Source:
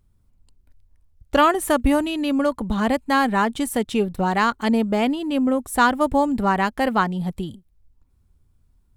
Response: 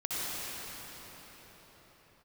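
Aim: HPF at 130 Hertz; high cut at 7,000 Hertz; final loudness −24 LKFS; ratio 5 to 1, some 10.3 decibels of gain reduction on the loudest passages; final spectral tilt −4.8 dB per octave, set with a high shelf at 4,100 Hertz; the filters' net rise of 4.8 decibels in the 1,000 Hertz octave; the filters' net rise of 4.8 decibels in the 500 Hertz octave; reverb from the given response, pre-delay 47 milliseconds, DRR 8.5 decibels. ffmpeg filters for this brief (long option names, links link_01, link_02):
-filter_complex "[0:a]highpass=130,lowpass=7000,equalizer=frequency=500:width_type=o:gain=4.5,equalizer=frequency=1000:width_type=o:gain=5,highshelf=frequency=4100:gain=-5.5,acompressor=threshold=-19dB:ratio=5,asplit=2[link_01][link_02];[1:a]atrim=start_sample=2205,adelay=47[link_03];[link_02][link_03]afir=irnorm=-1:irlink=0,volume=-16.5dB[link_04];[link_01][link_04]amix=inputs=2:normalize=0,volume=-0.5dB"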